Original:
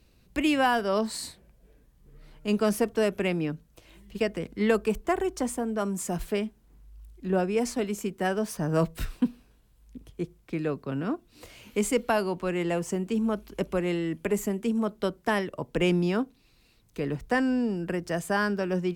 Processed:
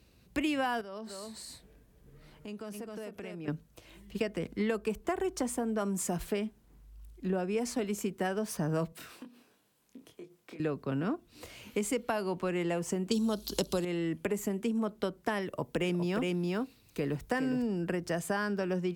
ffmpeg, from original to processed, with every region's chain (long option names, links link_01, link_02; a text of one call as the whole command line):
ffmpeg -i in.wav -filter_complex "[0:a]asettb=1/sr,asplit=3[link_01][link_02][link_03];[link_01]atrim=end=0.814[link_04];[link_02]atrim=start=0.81:end=3.48,asetpts=PTS-STARTPTS,afade=type=in:duration=0.004:curve=qsin,afade=type=out:start_time=2.666:duration=0.004:curve=qsin,aecho=1:1:259:0.473,atrim=end_sample=117747,acompressor=threshold=-42dB:ratio=4:attack=3.2:release=140:knee=1:detection=peak[link_05];[link_03]atrim=start=3.476[link_06];[link_04][link_05]acrossfade=duration=0.004:curve1=hsin:curve2=qsin[link_07];[link_07][link_06]acrossfade=duration=0.004:curve1=qsin:curve2=hsin,asettb=1/sr,asplit=3[link_08][link_09][link_10];[link_08]atrim=end=8.924[link_11];[link_09]atrim=start=8.92:end=10.6,asetpts=PTS-STARTPTS,afade=type=in:duration=0.004:curve=qsin,afade=type=out:start_time=1.676:duration=0.004:curve=qsin,highpass=270,acompressor=threshold=-44dB:ratio=8:attack=3.2:release=140:knee=1:detection=peak,asplit=2[link_12][link_13];[link_13]adelay=26,volume=-5dB[link_14];[link_12][link_14]amix=inputs=2:normalize=0,atrim=end_sample=74088[link_15];[link_10]atrim=start=10.596[link_16];[link_11][link_15]acrossfade=duration=0.004:curve1=hsin:curve2=qsin[link_17];[link_17][link_16]acrossfade=duration=0.004:curve1=qsin:curve2=hsin,asettb=1/sr,asplit=3[link_18][link_19][link_20];[link_18]atrim=end=13.114[link_21];[link_19]atrim=start=13.11:end=13.85,asetpts=PTS-STARTPTS,afade=type=in:duration=0.004:curve=qsin,afade=type=out:start_time=0.736:duration=0.004:curve=qsin,highshelf=frequency=3000:width_type=q:width=3:gain=10.5,acontrast=83[link_22];[link_20]atrim=start=13.846[link_23];[link_21][link_22]acrossfade=duration=0.004:curve1=hsin:curve2=qsin[link_24];[link_24][link_23]acrossfade=duration=0.004:curve1=qsin:curve2=hsin,asettb=1/sr,asplit=3[link_25][link_26][link_27];[link_25]atrim=end=15.424[link_28];[link_26]atrim=start=15.42:end=17.67,asetpts=PTS-STARTPTS,afade=type=in:duration=0.004:curve=qsin,afade=type=out:start_time=2.246:duration=0.004:curve=qsin,highshelf=frequency=10000:gain=8,aecho=1:1:411:0.631,atrim=end_sample=99225[link_29];[link_27]atrim=start=17.666[link_30];[link_28][link_29]acrossfade=duration=0.004:curve1=hsin:curve2=qsin[link_31];[link_31][link_30]acrossfade=duration=0.004:curve1=qsin:curve2=hsin,highpass=52,acompressor=threshold=-28dB:ratio=6" out.wav